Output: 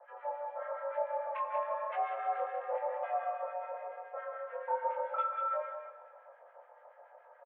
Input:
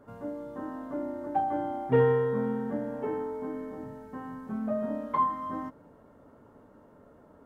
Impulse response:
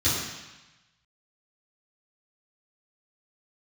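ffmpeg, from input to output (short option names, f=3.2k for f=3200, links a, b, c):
-filter_complex "[0:a]aecho=1:1:3:0.42,acompressor=threshold=-27dB:ratio=16,asoftclip=type=hard:threshold=-25.5dB,acrossover=split=1000[a][b];[a]aeval=exprs='val(0)*(1-1/2+1/2*cos(2*PI*7*n/s))':c=same[c];[b]aeval=exprs='val(0)*(1-1/2-1/2*cos(2*PI*7*n/s))':c=same[d];[c][d]amix=inputs=2:normalize=0,flanger=delay=17.5:depth=7.9:speed=0.98,aecho=1:1:188:0.447,asplit=2[e][f];[1:a]atrim=start_sample=2205,asetrate=27342,aresample=44100[g];[f][g]afir=irnorm=-1:irlink=0,volume=-28dB[h];[e][h]amix=inputs=2:normalize=0,highpass=f=200:t=q:w=0.5412,highpass=f=200:t=q:w=1.307,lowpass=f=2.7k:t=q:w=0.5176,lowpass=f=2.7k:t=q:w=0.7071,lowpass=f=2.7k:t=q:w=1.932,afreqshift=290,volume=5dB"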